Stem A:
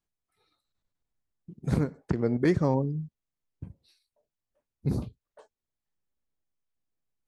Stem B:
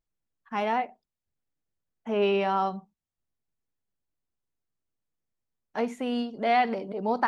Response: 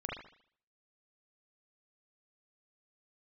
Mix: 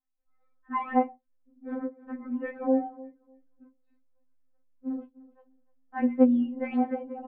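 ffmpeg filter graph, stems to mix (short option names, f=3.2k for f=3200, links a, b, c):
-filter_complex "[0:a]volume=-2.5dB,asplit=3[a][b][c];[b]volume=-19.5dB[d];[1:a]lowshelf=f=370:g=7.5,adelay=200,volume=2.5dB[e];[c]apad=whole_len=329731[f];[e][f]sidechaincompress=threshold=-49dB:ratio=5:attack=16:release=265[g];[d]aecho=0:1:300|600|900:1|0.18|0.0324[h];[a][g][h]amix=inputs=3:normalize=0,lowpass=f=1.8k:w=0.5412,lowpass=f=1.8k:w=1.3066,equalizer=f=430:w=3.1:g=8.5,afftfilt=real='re*3.46*eq(mod(b,12),0)':imag='im*3.46*eq(mod(b,12),0)':win_size=2048:overlap=0.75"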